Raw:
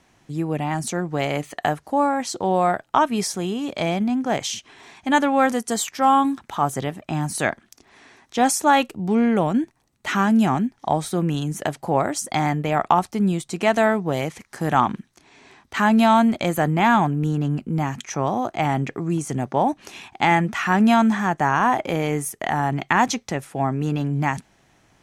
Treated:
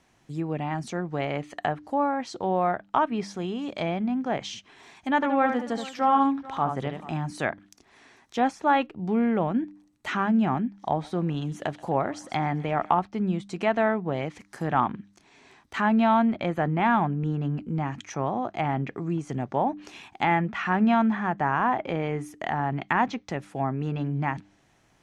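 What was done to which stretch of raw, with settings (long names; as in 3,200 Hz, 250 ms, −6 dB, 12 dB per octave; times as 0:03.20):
0:05.15–0:07.17: multi-tap delay 73/437 ms −6.5/−18.5 dB
0:10.79–0:12.92: feedback echo with a high-pass in the loop 129 ms, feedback 83%, high-pass 1,000 Hz, level −20 dB
whole clip: treble cut that deepens with the level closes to 2,900 Hz, closed at −18 dBFS; hum removal 99.62 Hz, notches 3; dynamic equaliser 7,800 Hz, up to −5 dB, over −47 dBFS, Q 0.81; level −5 dB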